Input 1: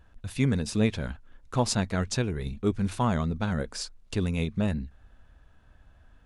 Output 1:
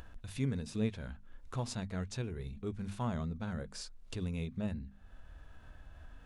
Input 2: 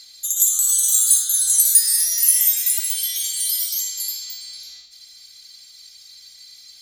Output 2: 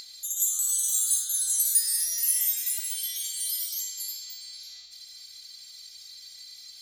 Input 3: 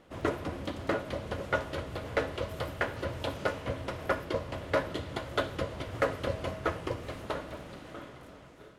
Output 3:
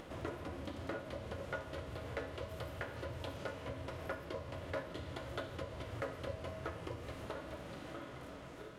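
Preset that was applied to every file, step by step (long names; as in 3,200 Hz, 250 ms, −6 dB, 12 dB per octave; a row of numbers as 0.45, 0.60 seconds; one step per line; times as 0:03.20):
harmonic and percussive parts rebalanced percussive −7 dB
mains-hum notches 50/100/150/200/250 Hz
upward compression, threshold −29 dBFS
level −8 dB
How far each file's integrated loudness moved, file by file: −10.5, −9.0, −10.0 LU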